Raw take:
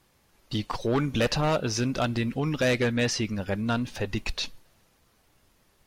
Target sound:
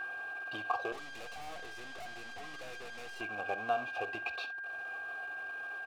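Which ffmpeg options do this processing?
-filter_complex "[0:a]aeval=exprs='val(0)+0.5*0.0106*sgn(val(0))':c=same,highpass=f=70:w=0.5412,highpass=f=70:w=1.3066,equalizer=f=6200:w=1.5:g=-6,aecho=1:1:2.5:0.55,acompressor=threshold=0.0562:ratio=12,acrusher=bits=2:mode=log:mix=0:aa=0.000001,asplit=3[s0][s1][s2];[s0]bandpass=f=730:t=q:w=8,volume=1[s3];[s1]bandpass=f=1090:t=q:w=8,volume=0.501[s4];[s2]bandpass=f=2440:t=q:w=8,volume=0.355[s5];[s3][s4][s5]amix=inputs=3:normalize=0,aeval=exprs='val(0)+0.00708*sin(2*PI*1600*n/s)':c=same,asettb=1/sr,asplit=3[s6][s7][s8];[s6]atrim=end=0.924[s9];[s7]atrim=start=0.92:end=3.21,asetpts=PTS-STARTPTS,afade=t=in:d=0.004:c=qsin,afade=t=out:st=2.286:d=0.004:c=qsin,aeval=exprs='(tanh(316*val(0)+0.65)-tanh(0.65))/316':c=same[s10];[s8]atrim=start=3.206[s11];[s9][s10]acrossfade=d=0.004:c1=hsin:c2=qsin[s12];[s12][s11]acrossfade=d=0.004:c1=qsin:c2=hsin,aecho=1:1:46|66:0.141|0.141,volume=2"

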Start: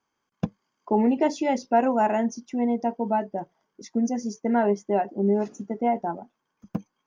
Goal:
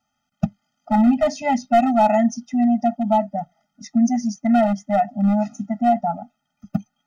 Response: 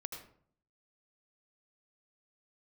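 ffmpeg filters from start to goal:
-af "volume=6.68,asoftclip=hard,volume=0.15,afftfilt=real='re*eq(mod(floor(b*sr/1024/300),2),0)':imag='im*eq(mod(floor(b*sr/1024/300),2),0)':win_size=1024:overlap=0.75,volume=2.37"

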